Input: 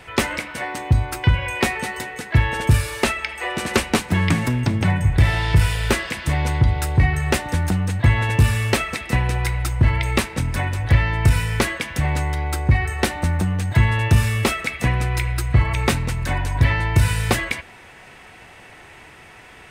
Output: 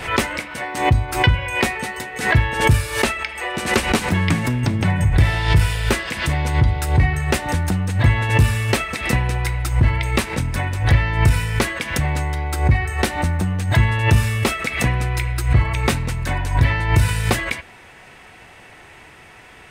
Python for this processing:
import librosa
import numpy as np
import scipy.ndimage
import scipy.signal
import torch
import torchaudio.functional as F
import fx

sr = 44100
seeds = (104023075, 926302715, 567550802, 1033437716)

y = fx.pre_swell(x, sr, db_per_s=96.0)